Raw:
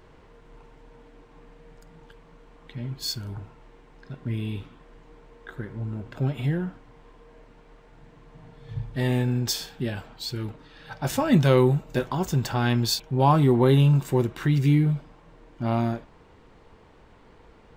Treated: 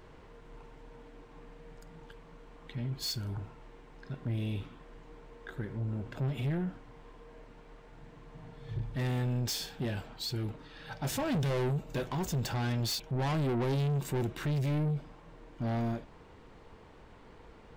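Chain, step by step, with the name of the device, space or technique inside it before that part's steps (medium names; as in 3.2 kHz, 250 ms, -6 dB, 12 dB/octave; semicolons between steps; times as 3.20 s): saturation between pre-emphasis and de-emphasis (treble shelf 5.9 kHz +6 dB; saturation -27 dBFS, distortion -5 dB; treble shelf 5.9 kHz -6 dB); dynamic bell 1.2 kHz, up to -4 dB, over -48 dBFS, Q 1.2; trim -1 dB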